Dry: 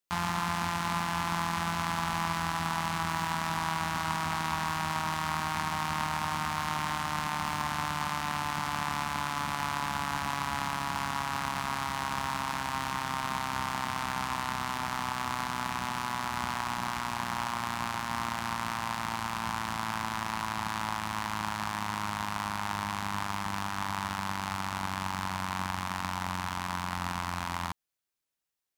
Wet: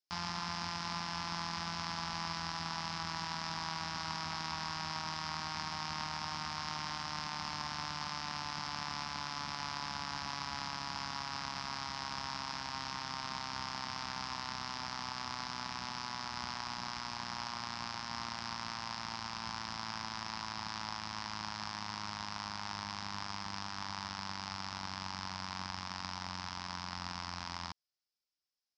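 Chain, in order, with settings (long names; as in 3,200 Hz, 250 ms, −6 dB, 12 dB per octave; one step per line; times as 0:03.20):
transistor ladder low-pass 5,500 Hz, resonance 75%
level +2.5 dB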